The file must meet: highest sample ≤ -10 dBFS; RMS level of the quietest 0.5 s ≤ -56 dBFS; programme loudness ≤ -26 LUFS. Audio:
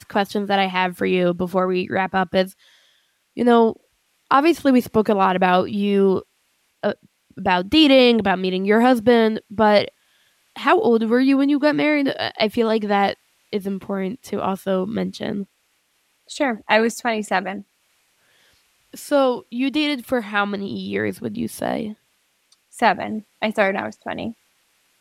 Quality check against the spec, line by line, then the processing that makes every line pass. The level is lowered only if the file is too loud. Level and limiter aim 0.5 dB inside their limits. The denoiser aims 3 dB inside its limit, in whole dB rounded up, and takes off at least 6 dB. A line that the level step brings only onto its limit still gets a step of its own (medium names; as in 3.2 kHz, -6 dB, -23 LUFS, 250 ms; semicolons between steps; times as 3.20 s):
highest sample -3.0 dBFS: fail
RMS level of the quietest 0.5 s -66 dBFS: pass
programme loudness -19.5 LUFS: fail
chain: trim -7 dB; peak limiter -10.5 dBFS